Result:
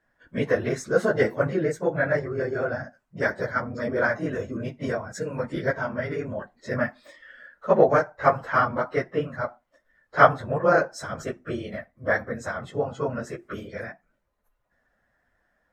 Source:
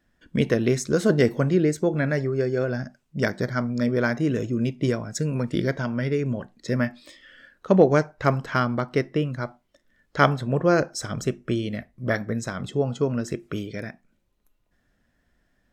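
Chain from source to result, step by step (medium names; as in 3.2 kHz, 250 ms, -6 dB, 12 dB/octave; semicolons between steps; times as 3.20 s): phase randomisation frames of 50 ms; high-order bell 980 Hz +11 dB 2.3 oct; trim -7.5 dB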